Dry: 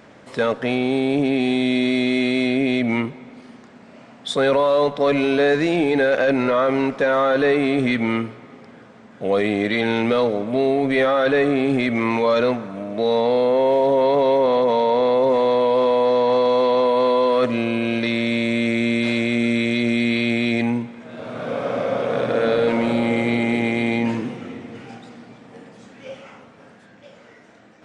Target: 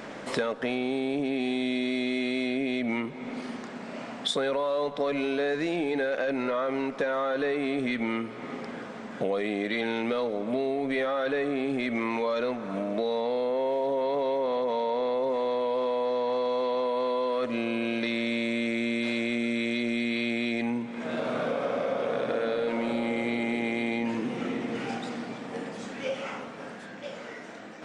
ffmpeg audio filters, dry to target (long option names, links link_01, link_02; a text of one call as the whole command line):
ffmpeg -i in.wav -af "equalizer=frequency=97:width_type=o:width=0.83:gain=-13.5,acompressor=threshold=-34dB:ratio=6,volume=7dB" out.wav